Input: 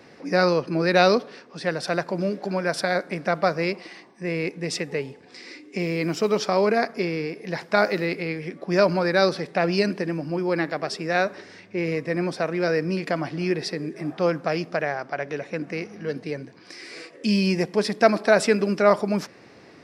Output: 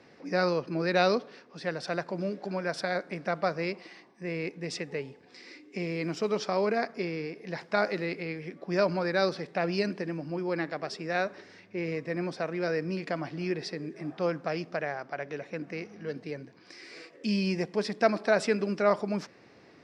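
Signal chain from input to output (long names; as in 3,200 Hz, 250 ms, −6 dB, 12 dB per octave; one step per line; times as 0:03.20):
low-pass filter 7,100 Hz 12 dB per octave
level −7 dB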